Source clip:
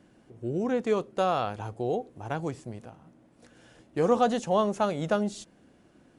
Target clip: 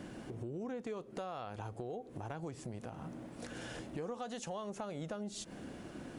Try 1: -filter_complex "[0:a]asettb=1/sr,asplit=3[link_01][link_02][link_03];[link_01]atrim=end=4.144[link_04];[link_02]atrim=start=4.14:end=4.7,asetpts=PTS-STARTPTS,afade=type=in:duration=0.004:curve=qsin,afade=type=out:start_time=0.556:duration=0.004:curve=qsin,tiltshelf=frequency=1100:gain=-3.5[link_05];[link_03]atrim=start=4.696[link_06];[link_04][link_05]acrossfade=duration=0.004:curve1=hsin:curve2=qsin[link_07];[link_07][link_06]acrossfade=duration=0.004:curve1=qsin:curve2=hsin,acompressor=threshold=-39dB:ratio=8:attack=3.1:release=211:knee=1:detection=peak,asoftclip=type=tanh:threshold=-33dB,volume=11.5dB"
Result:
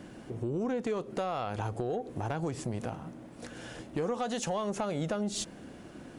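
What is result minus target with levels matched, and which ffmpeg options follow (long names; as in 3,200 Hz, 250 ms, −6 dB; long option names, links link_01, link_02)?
downward compressor: peak gain reduction −10 dB
-filter_complex "[0:a]asettb=1/sr,asplit=3[link_01][link_02][link_03];[link_01]atrim=end=4.144[link_04];[link_02]atrim=start=4.14:end=4.7,asetpts=PTS-STARTPTS,afade=type=in:duration=0.004:curve=qsin,afade=type=out:start_time=0.556:duration=0.004:curve=qsin,tiltshelf=frequency=1100:gain=-3.5[link_05];[link_03]atrim=start=4.696[link_06];[link_04][link_05]acrossfade=duration=0.004:curve1=hsin:curve2=qsin[link_07];[link_07][link_06]acrossfade=duration=0.004:curve1=qsin:curve2=hsin,acompressor=threshold=-50.5dB:ratio=8:attack=3.1:release=211:knee=1:detection=peak,asoftclip=type=tanh:threshold=-33dB,volume=11.5dB"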